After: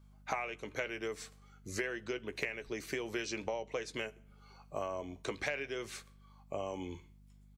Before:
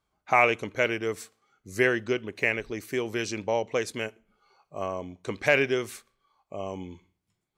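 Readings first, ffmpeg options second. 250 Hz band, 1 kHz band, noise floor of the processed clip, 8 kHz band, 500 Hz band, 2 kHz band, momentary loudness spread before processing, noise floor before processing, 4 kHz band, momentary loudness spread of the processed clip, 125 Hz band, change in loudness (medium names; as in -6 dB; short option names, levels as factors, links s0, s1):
-10.5 dB, -12.5 dB, -60 dBFS, -5.5 dB, -11.5 dB, -12.5 dB, 17 LU, -81 dBFS, -8.0 dB, 9 LU, -11.0 dB, -12.0 dB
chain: -filter_complex "[0:a]highshelf=f=5400:g=4.5,acrossover=split=6700[s0][s1];[s1]acompressor=threshold=0.00126:ratio=4:attack=1:release=60[s2];[s0][s2]amix=inputs=2:normalize=0,equalizer=f=210:t=o:w=1.3:g=-3.5,acrossover=split=220|1300|2300[s3][s4][s5][s6];[s3]alimiter=level_in=8.91:limit=0.0631:level=0:latency=1,volume=0.112[s7];[s7][s4][s5][s6]amix=inputs=4:normalize=0,acompressor=threshold=0.0158:ratio=16,aeval=exprs='val(0)+0.001*(sin(2*PI*50*n/s)+sin(2*PI*2*50*n/s)/2+sin(2*PI*3*50*n/s)/3+sin(2*PI*4*50*n/s)/4+sin(2*PI*5*50*n/s)/5)':c=same,asplit=2[s8][s9];[s9]adelay=14,volume=0.282[s10];[s8][s10]amix=inputs=2:normalize=0,volume=1.26"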